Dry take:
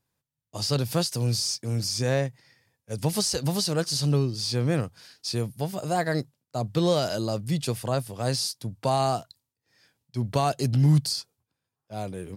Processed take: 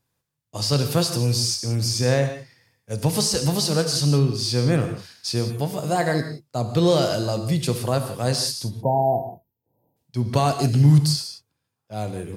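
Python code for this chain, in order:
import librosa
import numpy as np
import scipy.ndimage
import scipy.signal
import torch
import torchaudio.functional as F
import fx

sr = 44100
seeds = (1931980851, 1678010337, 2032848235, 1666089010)

y = fx.spec_erase(x, sr, start_s=8.8, length_s=1.17, low_hz=1000.0, high_hz=12000.0)
y = fx.rev_gated(y, sr, seeds[0], gate_ms=200, shape='flat', drr_db=6.5)
y = y * librosa.db_to_amplitude(3.5)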